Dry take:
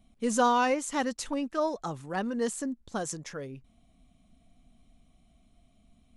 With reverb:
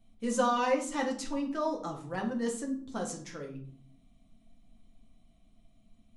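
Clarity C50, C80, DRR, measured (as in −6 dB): 9.5 dB, 14.0 dB, 0.0 dB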